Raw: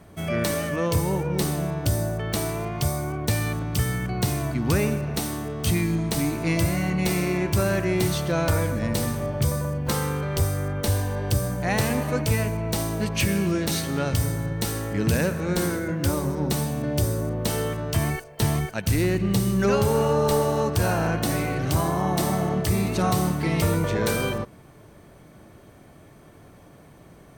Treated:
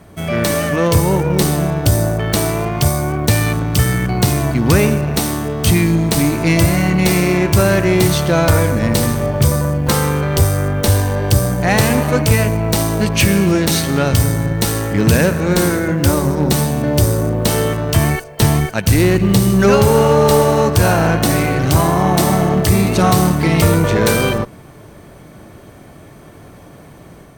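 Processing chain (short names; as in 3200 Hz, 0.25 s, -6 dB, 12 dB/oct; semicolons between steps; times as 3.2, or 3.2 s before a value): companded quantiser 8-bit; added harmonics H 6 -25 dB, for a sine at -13.5 dBFS; AGC gain up to 3.5 dB; gain +6.5 dB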